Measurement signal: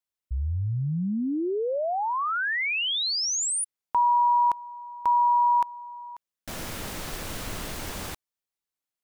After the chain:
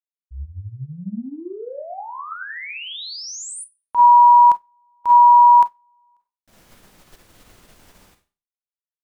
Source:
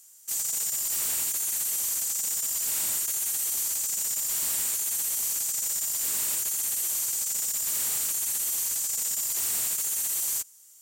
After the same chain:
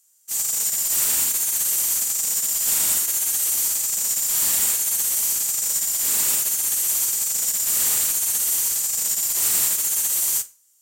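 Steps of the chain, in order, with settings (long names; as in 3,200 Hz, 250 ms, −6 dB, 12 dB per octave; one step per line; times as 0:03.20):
four-comb reverb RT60 0.35 s, combs from 31 ms, DRR 4.5 dB
expander for the loud parts 2.5 to 1, over −36 dBFS
level +7.5 dB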